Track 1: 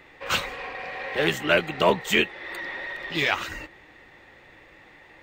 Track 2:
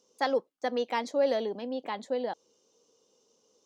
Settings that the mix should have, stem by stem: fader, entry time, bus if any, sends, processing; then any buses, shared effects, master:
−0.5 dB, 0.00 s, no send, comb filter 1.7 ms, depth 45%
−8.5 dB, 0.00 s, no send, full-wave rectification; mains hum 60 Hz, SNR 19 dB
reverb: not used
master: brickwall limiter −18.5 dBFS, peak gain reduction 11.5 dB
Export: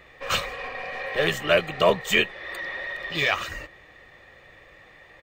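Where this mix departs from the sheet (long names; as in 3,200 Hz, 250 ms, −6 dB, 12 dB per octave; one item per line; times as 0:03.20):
stem 2 −8.5 dB → −17.5 dB
master: missing brickwall limiter −18.5 dBFS, peak gain reduction 11.5 dB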